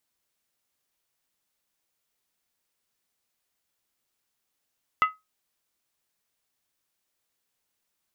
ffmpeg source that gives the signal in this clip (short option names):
-f lavfi -i "aevalsrc='0.2*pow(10,-3*t/0.2)*sin(2*PI*1270*t)+0.0841*pow(10,-3*t/0.158)*sin(2*PI*2024.4*t)+0.0355*pow(10,-3*t/0.137)*sin(2*PI*2712.7*t)+0.015*pow(10,-3*t/0.132)*sin(2*PI*2915.9*t)+0.00631*pow(10,-3*t/0.123)*sin(2*PI*3369.3*t)':d=0.63:s=44100"